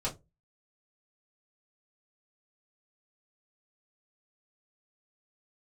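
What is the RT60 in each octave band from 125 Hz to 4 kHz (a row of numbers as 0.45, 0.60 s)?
0.35, 0.25, 0.25, 0.15, 0.15, 0.15 s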